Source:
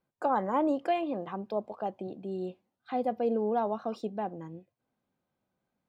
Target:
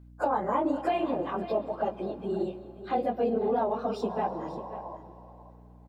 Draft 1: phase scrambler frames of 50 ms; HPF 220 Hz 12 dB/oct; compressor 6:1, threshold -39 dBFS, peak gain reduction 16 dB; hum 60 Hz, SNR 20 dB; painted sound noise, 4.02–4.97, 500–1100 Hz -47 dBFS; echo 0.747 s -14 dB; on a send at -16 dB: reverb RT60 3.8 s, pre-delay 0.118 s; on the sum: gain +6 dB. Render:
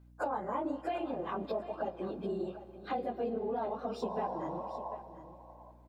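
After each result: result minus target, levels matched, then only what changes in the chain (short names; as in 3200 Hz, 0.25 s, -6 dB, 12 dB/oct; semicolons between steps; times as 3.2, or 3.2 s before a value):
compressor: peak gain reduction +8 dB; echo 0.208 s late
change: compressor 6:1, threshold -29.5 dBFS, peak gain reduction 8 dB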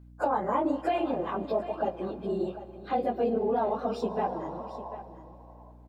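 echo 0.208 s late
change: echo 0.539 s -14 dB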